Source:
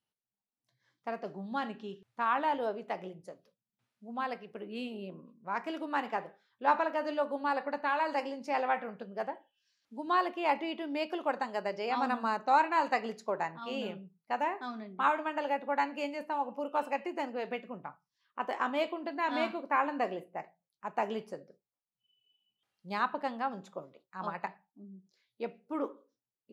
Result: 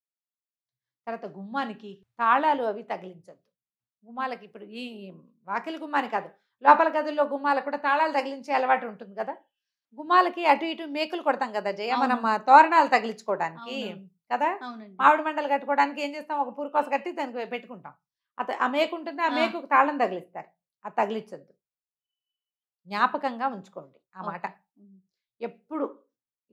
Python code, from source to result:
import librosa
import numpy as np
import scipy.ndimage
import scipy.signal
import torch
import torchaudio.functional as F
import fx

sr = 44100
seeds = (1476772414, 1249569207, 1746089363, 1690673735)

y = fx.band_widen(x, sr, depth_pct=70)
y = y * 10.0 ** (6.5 / 20.0)